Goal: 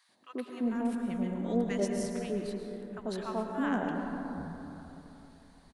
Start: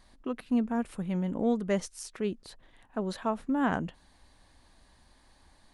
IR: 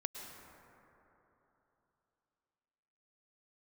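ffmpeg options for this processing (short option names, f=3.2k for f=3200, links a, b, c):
-filter_complex "[0:a]acrossover=split=160|980[a][b][c];[b]adelay=90[d];[a]adelay=660[e];[e][d][c]amix=inputs=3:normalize=0[f];[1:a]atrim=start_sample=2205[g];[f][g]afir=irnorm=-1:irlink=0"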